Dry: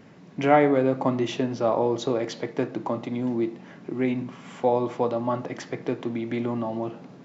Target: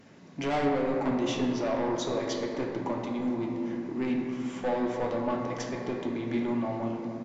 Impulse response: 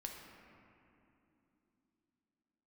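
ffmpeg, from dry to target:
-filter_complex "[0:a]highshelf=f=5.2k:g=10.5,aresample=16000,asoftclip=type=tanh:threshold=-22dB,aresample=44100[a];[1:a]atrim=start_sample=2205,asetrate=38808,aresample=44100[b];[a][b]afir=irnorm=-1:irlink=0"

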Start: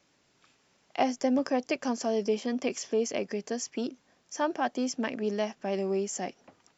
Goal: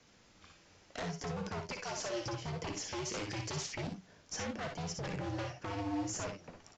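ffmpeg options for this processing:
-filter_complex "[0:a]asettb=1/sr,asplit=3[a][b][c];[a]atrim=end=1.724[d];[b]atrim=start=1.72:end=2.26,asetpts=PTS-STARTPTS,afade=t=in:d=0.004:c=qsin,afade=t=out:st=0.536:d=0.004:c=qsin,highpass=890[e];[c]atrim=start=2.256[f];[d][e]acrossfade=d=0.004:c1=hsin:c2=qsin[g];[g][f]acrossfade=d=0.004:c1=qsin:c2=hsin,afreqshift=-87,acompressor=threshold=-36dB:ratio=16,asplit=2[h][i];[i]acrusher=samples=33:mix=1:aa=0.000001:lfo=1:lforange=19.8:lforate=2.5,volume=-12dB[j];[h][j]amix=inputs=2:normalize=0,asettb=1/sr,asplit=3[k][l][m];[k]atrim=end=2.884[n];[l]atrim=start=2.88:end=3.75,asetpts=PTS-STARTPTS,afade=t=in:d=0.004:c=qsin,afade=t=out:st=0.866:d=0.004:c=qsin,highshelf=f=1.7k:t=q:w=1.5:g=7[o];[m]atrim=start=3.746[p];[n][o]acrossfade=d=0.004:c1=hsin:c2=qsin[q];[q][p]acrossfade=d=0.004:c1=qsin:c2=hsin,aeval=exprs='0.0141*(abs(mod(val(0)/0.0141+3,4)-2)-1)':c=same,flanger=delay=6.9:depth=5.1:regen=73:speed=0.84:shape=sinusoidal,asplit=2[r][s];[s]aecho=0:1:57|67:0.447|0.355[t];[r][t]amix=inputs=2:normalize=0,aresample=16000,aresample=44100,volume=7.5dB"

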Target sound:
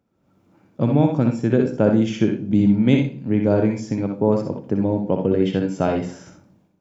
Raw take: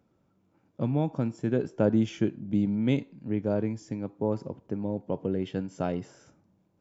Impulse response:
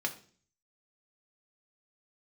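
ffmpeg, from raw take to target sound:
-filter_complex "[0:a]dynaudnorm=f=110:g=5:m=14dB,asplit=2[a][b];[1:a]atrim=start_sample=2205,adelay=61[c];[b][c]afir=irnorm=-1:irlink=0,volume=-7.5dB[d];[a][d]amix=inputs=2:normalize=0,volume=-3dB"

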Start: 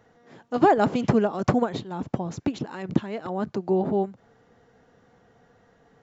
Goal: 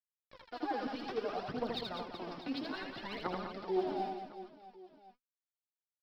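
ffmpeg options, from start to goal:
-filter_complex "[0:a]aemphasis=mode=production:type=75fm,afftfilt=real='re*gte(hypot(re,im),0.00794)':imag='im*gte(hypot(re,im),0.00794)':win_size=1024:overlap=0.75,highpass=f=390:p=1,areverse,acompressor=threshold=-31dB:ratio=10,areverse,alimiter=level_in=8.5dB:limit=-24dB:level=0:latency=1:release=186,volume=-8.5dB,acrossover=split=560[a][b];[a]aeval=exprs='val(0)*(1-0.5/2+0.5/2*cos(2*PI*5.9*n/s))':c=same[c];[b]aeval=exprs='val(0)*(1-0.5/2-0.5/2*cos(2*PI*5.9*n/s))':c=same[d];[c][d]amix=inputs=2:normalize=0,aresample=11025,aeval=exprs='val(0)*gte(abs(val(0)),0.00316)':c=same,aresample=44100,aphaser=in_gain=1:out_gain=1:delay=4.2:decay=0.75:speed=0.61:type=triangular,aecho=1:1:80|200|380|650|1055:0.631|0.398|0.251|0.158|0.1,volume=1dB"

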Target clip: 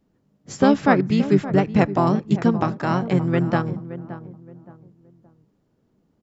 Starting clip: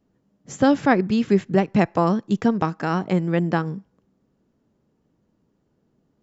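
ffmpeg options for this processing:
-filter_complex "[0:a]asplit=2[a][b];[b]adelay=571,lowpass=f=1.1k:p=1,volume=-13dB,asplit=2[c][d];[d]adelay=571,lowpass=f=1.1k:p=1,volume=0.34,asplit=2[e][f];[f]adelay=571,lowpass=f=1.1k:p=1,volume=0.34[g];[a][c][e][g]amix=inputs=4:normalize=0,asplit=2[h][i];[i]asetrate=33038,aresample=44100,atempo=1.33484,volume=-5dB[j];[h][j]amix=inputs=2:normalize=0"

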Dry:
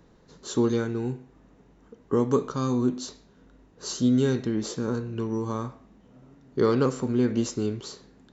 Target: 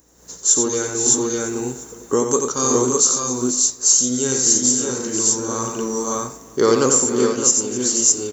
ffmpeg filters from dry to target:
-filter_complex "[0:a]asplit=2[a][b];[b]aecho=0:1:89|263|496|568|608:0.531|0.141|0.251|0.398|0.668[c];[a][c]amix=inputs=2:normalize=0,aeval=exprs='val(0)+0.00282*(sin(2*PI*60*n/s)+sin(2*PI*2*60*n/s)/2+sin(2*PI*3*60*n/s)/3+sin(2*PI*4*60*n/s)/4+sin(2*PI*5*60*n/s)/5)':c=same,bass=f=250:g=-12,treble=f=4k:g=8,asplit=2[d][e];[e]aecho=0:1:348|696|1044|1392:0.0708|0.0411|0.0238|0.0138[f];[d][f]amix=inputs=2:normalize=0,aexciter=amount=10.1:drive=1.5:freq=6k,dynaudnorm=f=150:g=3:m=12dB,volume=-1.5dB"

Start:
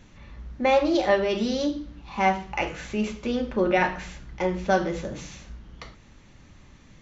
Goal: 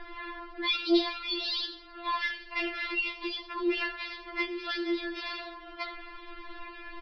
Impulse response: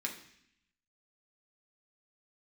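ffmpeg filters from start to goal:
-filter_complex "[0:a]equalizer=f=1.1k:w=0.59:g=11.5,acrossover=split=120|3000[a][b][c];[b]acompressor=threshold=-37dB:ratio=6[d];[a][d][c]amix=inputs=3:normalize=0,aresample=11025,asoftclip=type=tanh:threshold=-27dB,aresample=44100,afftfilt=real='re*4*eq(mod(b,16),0)':imag='im*4*eq(mod(b,16),0)':win_size=2048:overlap=0.75,volume=8.5dB"

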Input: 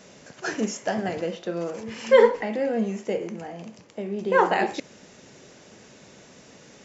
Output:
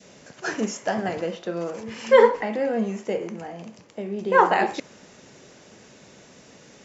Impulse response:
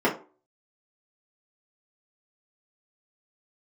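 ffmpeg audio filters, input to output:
-af "adynamicequalizer=threshold=0.0178:dfrequency=1100:dqfactor=1.3:tfrequency=1100:tqfactor=1.3:attack=5:release=100:ratio=0.375:range=2.5:mode=boostabove:tftype=bell"

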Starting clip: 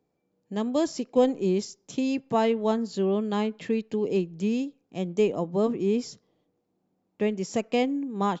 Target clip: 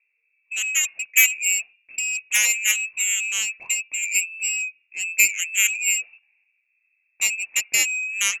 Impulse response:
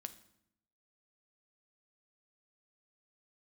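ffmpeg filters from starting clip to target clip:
-af "lowpass=f=2.4k:t=q:w=0.5098,lowpass=f=2.4k:t=q:w=0.6013,lowpass=f=2.4k:t=q:w=0.9,lowpass=f=2.4k:t=q:w=2.563,afreqshift=-2800,aeval=exprs='0.335*(cos(1*acos(clip(val(0)/0.335,-1,1)))-cos(1*PI/2))+0.106*(cos(7*acos(clip(val(0)/0.335,-1,1)))-cos(7*PI/2))':c=same,aexciter=amount=3.8:drive=3.6:freq=2.2k,volume=-5.5dB"

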